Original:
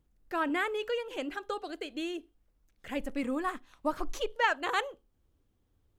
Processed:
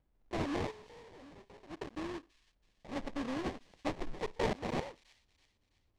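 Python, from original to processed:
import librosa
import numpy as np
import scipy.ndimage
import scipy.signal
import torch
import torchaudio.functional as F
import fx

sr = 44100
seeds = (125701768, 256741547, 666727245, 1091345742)

y = fx.block_float(x, sr, bits=3)
y = fx.tube_stage(y, sr, drive_db=47.0, bias=0.75, at=(0.7, 1.69), fade=0.02)
y = fx.sample_hold(y, sr, seeds[0], rate_hz=1400.0, jitter_pct=20)
y = fx.air_absorb(y, sr, metres=98.0)
y = fx.echo_wet_highpass(y, sr, ms=329, feedback_pct=44, hz=3100.0, wet_db=-16)
y = y * 10.0 ** (-5.0 / 20.0)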